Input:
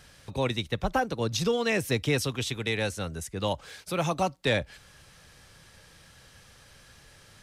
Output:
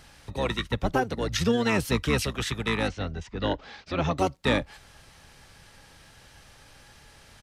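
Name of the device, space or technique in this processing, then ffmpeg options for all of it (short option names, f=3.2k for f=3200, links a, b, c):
octave pedal: -filter_complex "[0:a]asettb=1/sr,asplit=3[a][b][c];[a]atrim=end=2.884[d];[b]atrim=start=2.88:end=4.18,asetpts=PTS-STARTPTS,afade=t=in:d=0.004:c=qsin,afade=t=out:st=1.296:d=0.004:c=qsin,lowpass=f=5k:w=0.5412,lowpass=f=5k:w=1.3066[e];[c]atrim=start=4.176[f];[d][e]acrossfade=d=0.004:c1=hsin:c2=qsin[g];[g][f]acrossfade=d=0.004:c1=qsin:c2=hsin,asplit=2[h][i];[i]asetrate=22050,aresample=44100,atempo=2,volume=-3dB[j];[h][j]amix=inputs=2:normalize=0"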